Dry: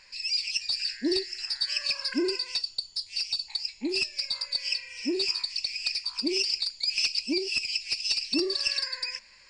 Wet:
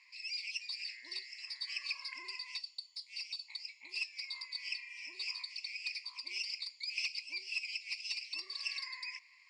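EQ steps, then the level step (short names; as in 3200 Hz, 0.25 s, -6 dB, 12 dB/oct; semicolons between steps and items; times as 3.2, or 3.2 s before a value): double band-pass 1500 Hz, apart 1 oct; differentiator; +11.0 dB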